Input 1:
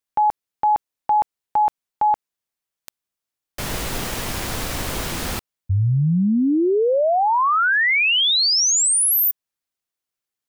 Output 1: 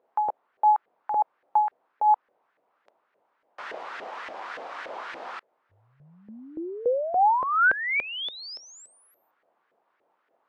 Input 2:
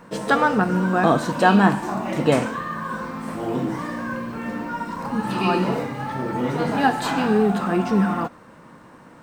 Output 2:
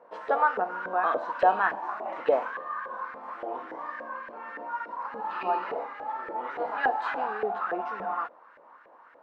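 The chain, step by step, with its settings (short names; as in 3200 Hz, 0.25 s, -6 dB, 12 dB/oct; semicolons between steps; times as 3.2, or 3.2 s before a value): added noise brown -49 dBFS; BPF 380–5000 Hz; LFO band-pass saw up 3.5 Hz 520–1800 Hz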